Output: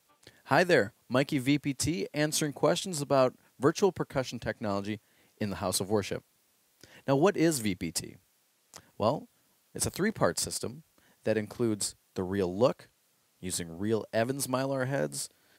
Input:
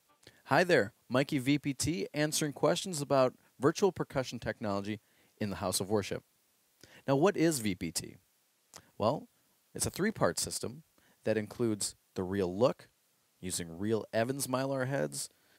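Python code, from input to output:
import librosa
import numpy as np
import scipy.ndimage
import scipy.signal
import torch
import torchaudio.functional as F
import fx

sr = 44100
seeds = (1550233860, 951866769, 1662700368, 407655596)

y = x * librosa.db_to_amplitude(2.5)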